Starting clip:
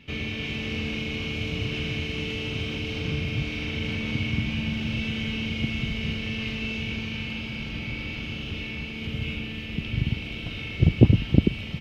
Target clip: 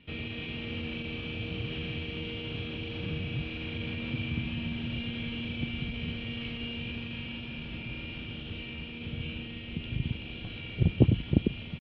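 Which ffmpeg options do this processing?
-af "lowpass=f=3.3k:w=0.5412,lowpass=f=3.3k:w=1.3066,asetrate=46722,aresample=44100,atempo=0.943874,volume=-6dB"

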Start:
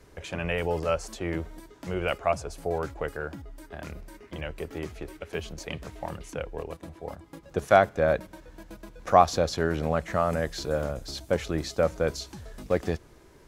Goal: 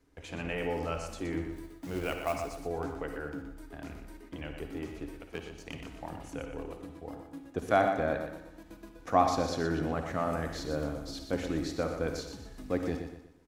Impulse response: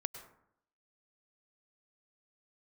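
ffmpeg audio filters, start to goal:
-filter_complex "[0:a]bandreject=f=570:w=13,agate=range=-9dB:threshold=-50dB:ratio=16:detection=peak,equalizer=f=280:t=o:w=0.21:g=14,asettb=1/sr,asplit=3[a][b][c];[a]atrim=end=1.524[d];[b]atrim=start=1.52:end=2.57,asetpts=PTS-STARTPTS,afade=t=in:d=0.004:c=qsin,afade=t=out:st=1.046:d=0.004:c=qsin,acrusher=bits=4:mode=log:mix=0:aa=0.000001[e];[c]atrim=start=2.566[f];[d][e]acrossfade=d=0.004:c1=hsin:c2=qsin[g];[g][f]acrossfade=d=0.004:c1=qsin:c2=hsin,asettb=1/sr,asplit=3[h][i][j];[h]atrim=end=5.224[k];[i]atrim=start=5.22:end=5.74,asetpts=PTS-STARTPTS,afade=t=in:d=0.004:c=qsin,afade=t=out:st=0.516:d=0.004:c=qsin,aeval=exprs='0.15*(cos(1*acos(clip(val(0)/0.15,-1,1)))-cos(1*PI/2))+0.0119*(cos(7*acos(clip(val(0)/0.15,-1,1)))-cos(7*PI/2))':c=same[l];[j]atrim=start=5.736[m];[k][l]acrossfade=d=0.004:c1=hsin:c2=qsin[n];[n][m]acrossfade=d=0.004:c1=qsin:c2=hsin,aecho=1:1:121|242|363|484:0.398|0.147|0.0545|0.0202[o];[1:a]atrim=start_sample=2205,asetrate=83790,aresample=44100[p];[o][p]afir=irnorm=-1:irlink=0"

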